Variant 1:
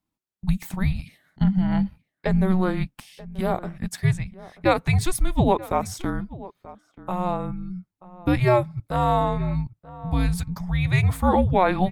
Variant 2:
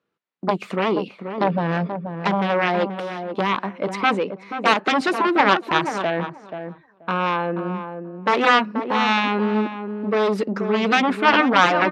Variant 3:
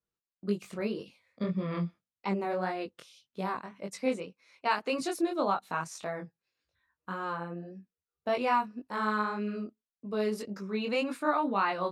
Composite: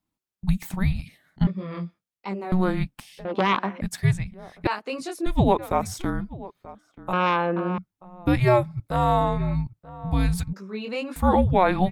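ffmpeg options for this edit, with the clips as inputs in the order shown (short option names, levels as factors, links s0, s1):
-filter_complex "[2:a]asplit=3[s0][s1][s2];[1:a]asplit=2[s3][s4];[0:a]asplit=6[s5][s6][s7][s8][s9][s10];[s5]atrim=end=1.472[s11];[s0]atrim=start=1.468:end=2.522[s12];[s6]atrim=start=2.518:end=3.252[s13];[s3]atrim=start=3.248:end=3.812[s14];[s7]atrim=start=3.808:end=4.672[s15];[s1]atrim=start=4.668:end=5.262[s16];[s8]atrim=start=5.258:end=7.132[s17];[s4]atrim=start=7.128:end=7.782[s18];[s9]atrim=start=7.778:end=10.532[s19];[s2]atrim=start=10.528:end=11.162[s20];[s10]atrim=start=11.158[s21];[s11][s12]acrossfade=d=0.004:c1=hsin:c2=hsin[s22];[s22][s13]acrossfade=d=0.004:c1=hsin:c2=hsin[s23];[s23][s14]acrossfade=d=0.004:c1=hsin:c2=hsin[s24];[s24][s15]acrossfade=d=0.004:c1=hsin:c2=hsin[s25];[s25][s16]acrossfade=d=0.004:c1=hsin:c2=hsin[s26];[s26][s17]acrossfade=d=0.004:c1=hsin:c2=hsin[s27];[s27][s18]acrossfade=d=0.004:c1=hsin:c2=hsin[s28];[s28][s19]acrossfade=d=0.004:c1=hsin:c2=hsin[s29];[s29][s20]acrossfade=d=0.004:c1=hsin:c2=hsin[s30];[s30][s21]acrossfade=d=0.004:c1=hsin:c2=hsin"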